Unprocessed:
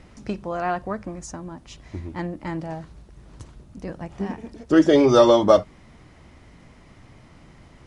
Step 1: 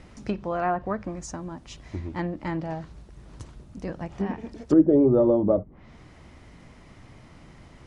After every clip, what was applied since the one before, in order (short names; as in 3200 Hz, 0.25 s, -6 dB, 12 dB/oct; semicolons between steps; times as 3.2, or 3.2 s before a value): treble ducked by the level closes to 400 Hz, closed at -16.5 dBFS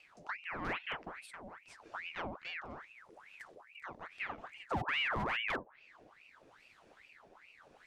wavefolder -16 dBFS; rotary speaker horn 0.85 Hz; ring modulator with a swept carrier 1500 Hz, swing 75%, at 2.4 Hz; gain -8.5 dB